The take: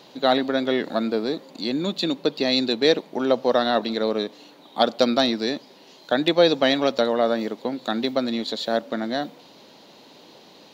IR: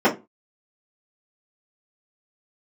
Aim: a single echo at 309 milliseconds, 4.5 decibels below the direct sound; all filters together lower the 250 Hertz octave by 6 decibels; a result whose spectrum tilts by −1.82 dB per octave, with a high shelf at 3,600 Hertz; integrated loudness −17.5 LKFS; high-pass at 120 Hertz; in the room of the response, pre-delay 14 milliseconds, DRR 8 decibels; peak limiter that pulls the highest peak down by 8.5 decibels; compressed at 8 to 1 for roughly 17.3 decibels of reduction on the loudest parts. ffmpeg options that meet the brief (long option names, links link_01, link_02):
-filter_complex "[0:a]highpass=120,equalizer=frequency=250:width_type=o:gain=-7,highshelf=frequency=3600:gain=3,acompressor=threshold=-32dB:ratio=8,alimiter=level_in=2.5dB:limit=-24dB:level=0:latency=1,volume=-2.5dB,aecho=1:1:309:0.596,asplit=2[link_01][link_02];[1:a]atrim=start_sample=2205,adelay=14[link_03];[link_02][link_03]afir=irnorm=-1:irlink=0,volume=-29dB[link_04];[link_01][link_04]amix=inputs=2:normalize=0,volume=19dB"